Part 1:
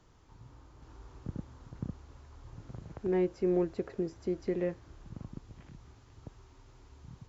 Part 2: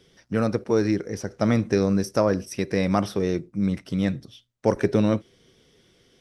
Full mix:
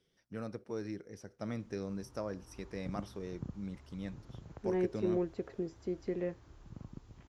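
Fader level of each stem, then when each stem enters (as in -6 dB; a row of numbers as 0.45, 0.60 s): -4.0, -18.5 dB; 1.60, 0.00 s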